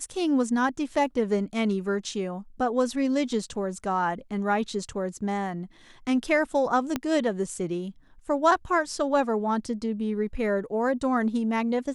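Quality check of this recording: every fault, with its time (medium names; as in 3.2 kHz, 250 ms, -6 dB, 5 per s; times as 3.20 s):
6.96 s: pop -12 dBFS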